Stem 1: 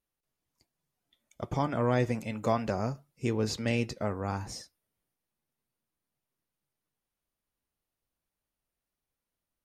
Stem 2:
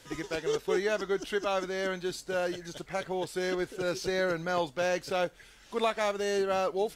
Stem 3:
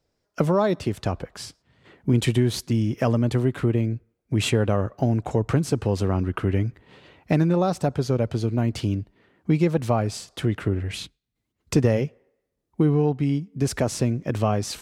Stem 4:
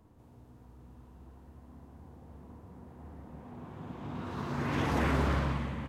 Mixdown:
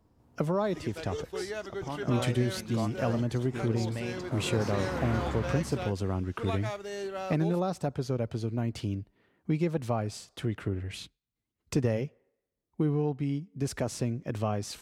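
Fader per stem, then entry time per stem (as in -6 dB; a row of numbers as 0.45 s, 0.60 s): -8.0 dB, -7.5 dB, -8.0 dB, -5.5 dB; 0.30 s, 0.65 s, 0.00 s, 0.00 s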